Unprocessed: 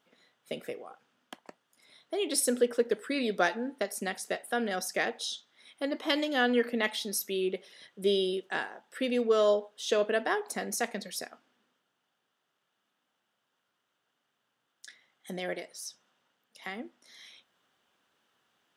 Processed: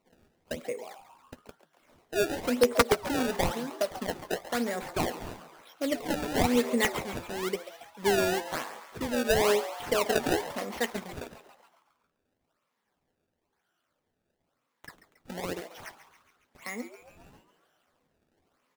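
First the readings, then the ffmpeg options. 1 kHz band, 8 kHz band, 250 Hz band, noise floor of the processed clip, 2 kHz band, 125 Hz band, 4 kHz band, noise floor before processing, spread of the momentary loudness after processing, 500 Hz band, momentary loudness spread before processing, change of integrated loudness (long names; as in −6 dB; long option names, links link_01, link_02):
+3.5 dB, −1.0 dB, +2.0 dB, −80 dBFS, 0.0 dB, can't be measured, −0.5 dB, −81 dBFS, 17 LU, +0.5 dB, 15 LU, +1.0 dB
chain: -filter_complex "[0:a]afftfilt=real='re*pow(10,11/40*sin(2*PI*(0.94*log(max(b,1)*sr/1024/100)/log(2)-(-1.5)*(pts-256)/sr)))':imag='im*pow(10,11/40*sin(2*PI*(0.94*log(max(b,1)*sr/1024/100)/log(2)-(-1.5)*(pts-256)/sr)))':win_size=1024:overlap=0.75,lowpass=6700,equalizer=frequency=5000:width_type=o:width=1.5:gain=-4.5,acrusher=samples=24:mix=1:aa=0.000001:lfo=1:lforange=38.4:lforate=1,aeval=exprs='(mod(4.22*val(0)+1,2)-1)/4.22':channel_layout=same,asplit=2[link_01][link_02];[link_02]adelay=12,volume=-12.5dB[link_03];[link_01][link_03]amix=inputs=2:normalize=0,asplit=7[link_04][link_05][link_06][link_07][link_08][link_09][link_10];[link_05]adelay=138,afreqshift=150,volume=-14dB[link_11];[link_06]adelay=276,afreqshift=300,volume=-18.9dB[link_12];[link_07]adelay=414,afreqshift=450,volume=-23.8dB[link_13];[link_08]adelay=552,afreqshift=600,volume=-28.6dB[link_14];[link_09]adelay=690,afreqshift=750,volume=-33.5dB[link_15];[link_10]adelay=828,afreqshift=900,volume=-38.4dB[link_16];[link_04][link_11][link_12][link_13][link_14][link_15][link_16]amix=inputs=7:normalize=0"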